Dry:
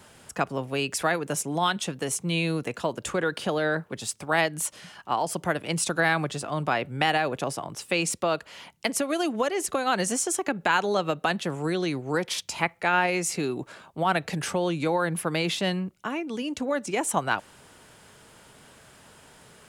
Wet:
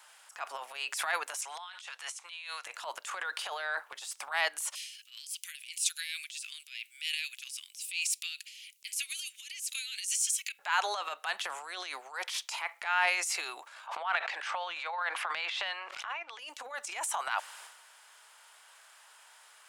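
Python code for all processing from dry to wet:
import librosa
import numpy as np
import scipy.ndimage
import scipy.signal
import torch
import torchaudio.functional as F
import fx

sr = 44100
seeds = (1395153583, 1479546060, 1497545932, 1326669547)

y = fx.chain(x, sr, fx.bessel_highpass(hz=1300.0, order=2),
    fx.over_compress(threshold_db=-36.0, ratio=-0.5),
    fx.air_absorb(metres=52.0), at=(1.41, 2.66))
y = fx.chain(y, sr, fx.ellip_highpass(hz=2400.0, order=4, stop_db=70),
    fx.high_shelf(hz=8500.0, db=8.5), at=(4.75, 10.59))
y = fx.chain(y, sr, fx.bandpass_edges(low_hz=540.0, high_hz=3200.0),
    fx.pre_swell(db_per_s=34.0), at=(13.87, 16.39))
y = scipy.signal.sosfilt(scipy.signal.butter(4, 820.0, 'highpass', fs=sr, output='sos'), y)
y = fx.transient(y, sr, attack_db=-10, sustain_db=9)
y = F.gain(torch.from_numpy(y), -3.0).numpy()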